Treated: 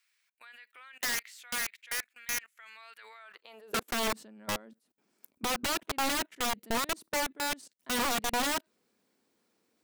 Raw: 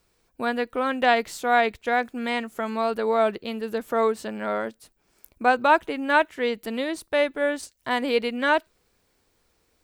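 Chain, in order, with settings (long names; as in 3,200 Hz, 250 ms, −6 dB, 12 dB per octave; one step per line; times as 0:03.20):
high-pass filter sweep 2,000 Hz → 220 Hz, 0:03.16–0:04.00
output level in coarse steps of 24 dB
wrap-around overflow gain 21.5 dB
level −3.5 dB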